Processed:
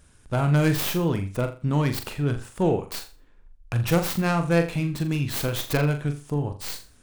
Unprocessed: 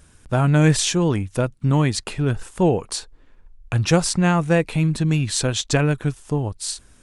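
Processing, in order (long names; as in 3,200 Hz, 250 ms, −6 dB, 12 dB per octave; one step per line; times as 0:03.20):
stylus tracing distortion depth 0.45 ms
flutter between parallel walls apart 7.1 metres, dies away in 0.33 s
level −5 dB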